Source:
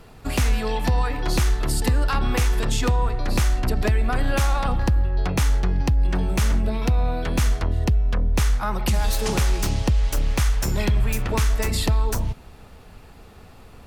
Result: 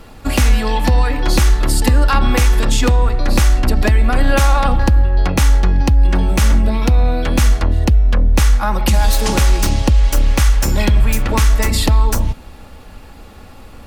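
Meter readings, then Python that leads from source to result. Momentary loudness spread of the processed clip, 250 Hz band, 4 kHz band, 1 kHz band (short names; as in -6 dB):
2 LU, +8.0 dB, +7.5 dB, +8.0 dB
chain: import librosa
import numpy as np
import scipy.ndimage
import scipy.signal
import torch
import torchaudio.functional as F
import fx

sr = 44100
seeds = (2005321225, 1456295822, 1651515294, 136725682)

y = x + 0.38 * np.pad(x, (int(3.6 * sr / 1000.0), 0))[:len(x)]
y = y * librosa.db_to_amplitude(7.0)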